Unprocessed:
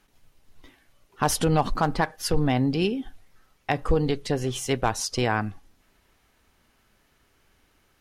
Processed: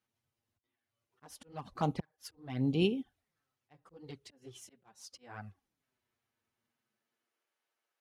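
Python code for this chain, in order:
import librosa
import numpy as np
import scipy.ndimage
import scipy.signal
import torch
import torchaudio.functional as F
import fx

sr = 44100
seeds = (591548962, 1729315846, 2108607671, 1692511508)

y = fx.auto_swell(x, sr, attack_ms=457.0)
y = fx.filter_sweep_highpass(y, sr, from_hz=91.0, to_hz=540.0, start_s=6.58, end_s=7.55, q=0.98)
y = fx.env_flanger(y, sr, rest_ms=8.9, full_db=-22.5)
y = fx.upward_expand(y, sr, threshold_db=-51.0, expansion=1.5)
y = F.gain(torch.from_numpy(y), -3.5).numpy()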